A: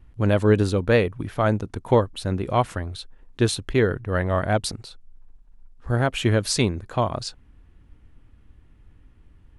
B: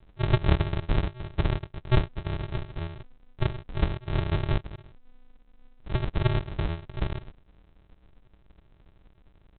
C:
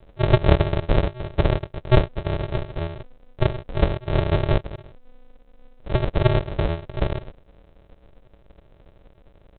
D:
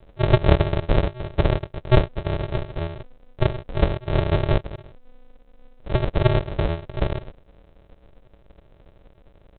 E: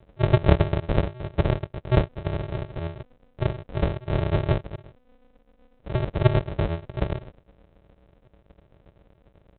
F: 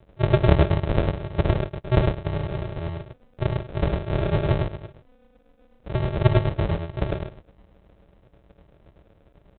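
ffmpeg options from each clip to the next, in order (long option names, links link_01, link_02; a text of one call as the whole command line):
ffmpeg -i in.wav -af "tiltshelf=frequency=1300:gain=-6,aresample=8000,acrusher=samples=32:mix=1:aa=0.000001,aresample=44100" out.wav
ffmpeg -i in.wav -af "equalizer=frequency=540:width_type=o:width=0.76:gain=10,volume=5dB" out.wav
ffmpeg -i in.wav -af anull out.wav
ffmpeg -i in.wav -af "tremolo=f=8:d=0.5,highpass=frequency=80:poles=1,bass=frequency=250:gain=4,treble=frequency=4000:gain=-6,volume=-1dB" out.wav
ffmpeg -i in.wav -af "aecho=1:1:103:0.668" out.wav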